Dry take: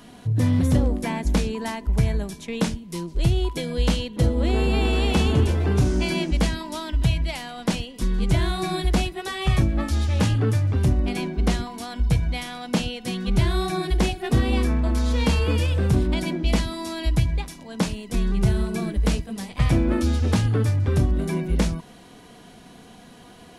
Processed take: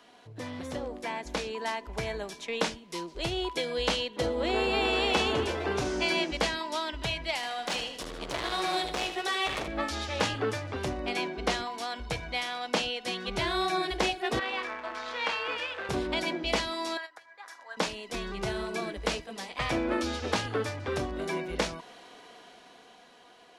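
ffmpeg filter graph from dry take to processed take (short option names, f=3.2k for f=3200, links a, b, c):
-filter_complex "[0:a]asettb=1/sr,asplit=3[a][b][c];[a]atrim=end=7.354[d];[b]atrim=start=7.35:end=9.68,asetpts=PTS-STARTPTS,afade=t=in:d=0.004:c=qsin,afade=t=out:st=2.326:d=0.004:c=qsin,highshelf=f=8.5k:g=5,asoftclip=type=hard:threshold=-25dB,aecho=1:1:77|154|231|308|385:0.355|0.17|0.0817|0.0392|0.0188,atrim=end_sample=102753[e];[c]atrim=start=9.676[f];[d][e]acrossfade=d=0.004:c1=hsin:c2=qsin[g];[g][f]acrossfade=d=0.004:c1=qsin:c2=hsin,asettb=1/sr,asplit=3[h][i][j];[h]atrim=end=14.394[k];[i]atrim=start=14.39:end=15.89,asetpts=PTS-STARTPTS,afade=t=in:d=0.004:c=qsin,afade=t=out:st=1.496:d=0.004:c=qsin,aeval=exprs='val(0)+0.5*0.0282*sgn(val(0))':c=same,bandpass=f=1.6k:t=q:w=0.89[l];[j]atrim=start=15.886[m];[k][l]acrossfade=d=0.004:c1=hsin:c2=qsin[n];[n][m]acrossfade=d=0.004:c1=qsin:c2=hsin,asettb=1/sr,asplit=3[o][p][q];[o]atrim=end=16.974[r];[p]atrim=start=16.97:end=17.77,asetpts=PTS-STARTPTS,afade=t=in:d=0.004:c=qsin,afade=t=out:st=0.796:d=0.004:c=qsin,highshelf=f=2.1k:t=q:w=3:g=-7,acompressor=threshold=-29dB:ratio=16:attack=3.2:release=140:knee=1:detection=peak,highpass=940[s];[q]atrim=start=17.766[t];[r][s]acrossfade=d=0.004:c1=hsin:c2=qsin[u];[u][t]acrossfade=d=0.004:c1=qsin:c2=hsin,dynaudnorm=f=270:g=11:m=11.5dB,acrossover=split=370 6700:gain=0.0891 1 0.224[v][w][x];[v][w][x]amix=inputs=3:normalize=0,volume=-6dB"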